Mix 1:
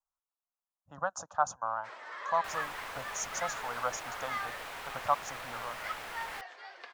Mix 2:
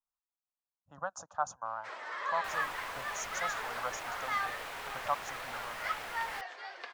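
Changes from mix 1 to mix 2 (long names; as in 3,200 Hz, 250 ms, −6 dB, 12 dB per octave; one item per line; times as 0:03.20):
speech −4.5 dB
first sound +3.5 dB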